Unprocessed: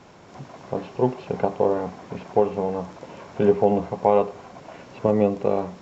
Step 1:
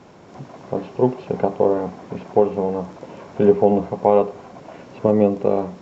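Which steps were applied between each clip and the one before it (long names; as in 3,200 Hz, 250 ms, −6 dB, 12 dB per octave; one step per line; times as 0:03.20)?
parametric band 290 Hz +5.5 dB 2.9 octaves
level −1 dB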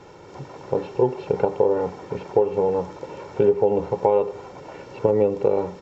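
comb filter 2.2 ms, depth 61%
downward compressor 4 to 1, threshold −15 dBFS, peak gain reduction 9 dB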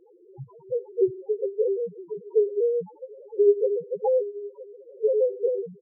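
transient designer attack +4 dB, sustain −1 dB
single-tap delay 966 ms −20.5 dB
spectral peaks only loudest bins 1
level +3 dB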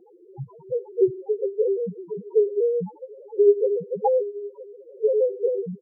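hollow resonant body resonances 210/740 Hz, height 15 dB, ringing for 40 ms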